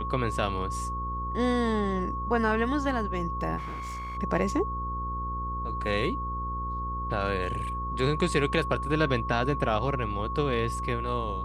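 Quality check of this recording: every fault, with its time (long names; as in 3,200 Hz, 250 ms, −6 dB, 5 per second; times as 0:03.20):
mains buzz 60 Hz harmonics 9 −35 dBFS
whistle 1,100 Hz −32 dBFS
0:03.57–0:04.18: clipping −33 dBFS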